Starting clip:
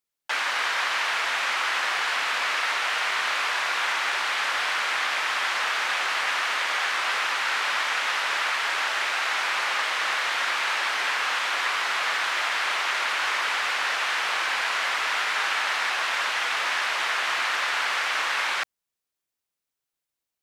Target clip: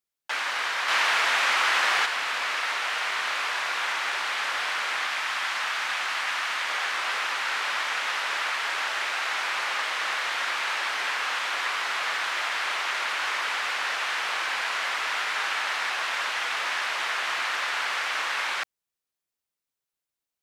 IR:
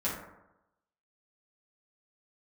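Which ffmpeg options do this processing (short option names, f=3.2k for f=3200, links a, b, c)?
-filter_complex "[0:a]asettb=1/sr,asplit=3[a][b][c];[a]atrim=end=0.884[d];[b]atrim=start=0.88:end=2.06,asetpts=PTS-STARTPTS,afade=t=in:d=0.004:c=qsin,afade=t=out:st=1.176:d=0.004:c=qsin,acontrast=36[e];[c]atrim=start=2.056[f];[d][e]acrossfade=d=0.004:c1=hsin:c2=qsin[g];[g][f]acrossfade=d=0.004:c1=qsin:c2=hsin,asettb=1/sr,asplit=3[h][i][j];[h]atrim=end=5.064[k];[i]atrim=start=5.06:end=6.67,asetpts=PTS-STARTPTS,afade=t=in:d=0.004:c=qsin,afade=t=out:st=1.606:d=0.004:c=qsin,equalizer=f=450:t=o:w=0.96:g=-5.5[l];[j]atrim=start=6.666[m];[k][l]acrossfade=d=0.004:c1=hsin:c2=qsin[n];[n][m]acrossfade=d=0.004:c1=qsin:c2=hsin,volume=-2.5dB"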